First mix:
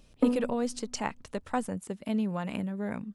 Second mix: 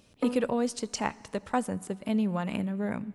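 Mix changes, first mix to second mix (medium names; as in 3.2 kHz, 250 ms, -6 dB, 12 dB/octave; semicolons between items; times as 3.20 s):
speech: send on; background: add tilt EQ +3.5 dB/octave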